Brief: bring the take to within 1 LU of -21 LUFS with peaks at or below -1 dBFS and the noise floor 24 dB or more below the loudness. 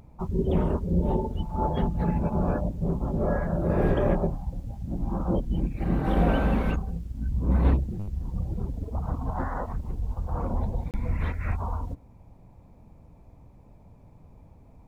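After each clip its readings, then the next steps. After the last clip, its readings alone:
dropouts 1; longest dropout 28 ms; loudness -28.5 LUFS; peak level -9.5 dBFS; loudness target -21.0 LUFS
-> interpolate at 10.91 s, 28 ms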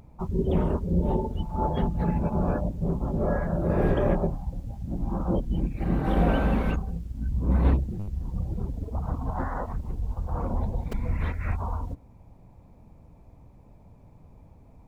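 dropouts 0; loudness -28.5 LUFS; peak level -9.5 dBFS; loudness target -21.0 LUFS
-> trim +7.5 dB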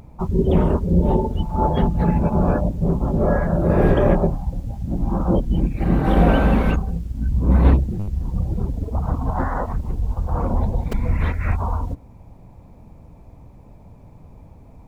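loudness -21.0 LUFS; peak level -2.0 dBFS; noise floor -45 dBFS

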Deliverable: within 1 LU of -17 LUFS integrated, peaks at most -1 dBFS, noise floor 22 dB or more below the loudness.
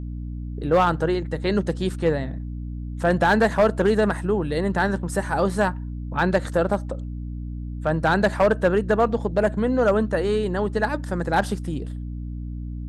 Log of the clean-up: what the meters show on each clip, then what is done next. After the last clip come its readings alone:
clipped samples 0.5%; clipping level -11.5 dBFS; hum 60 Hz; highest harmonic 300 Hz; hum level -29 dBFS; loudness -22.5 LUFS; peak level -11.5 dBFS; loudness target -17.0 LUFS
-> clip repair -11.5 dBFS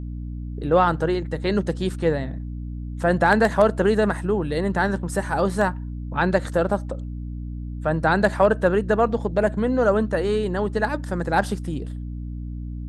clipped samples 0.0%; hum 60 Hz; highest harmonic 300 Hz; hum level -29 dBFS
-> hum notches 60/120/180/240/300 Hz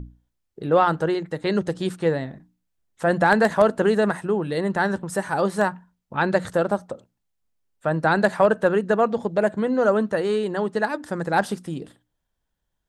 hum not found; loudness -22.5 LUFS; peak level -2.0 dBFS; loudness target -17.0 LUFS
-> trim +5.5 dB; peak limiter -1 dBFS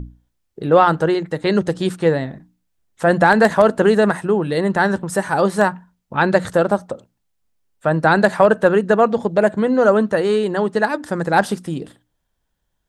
loudness -17.0 LUFS; peak level -1.0 dBFS; noise floor -72 dBFS

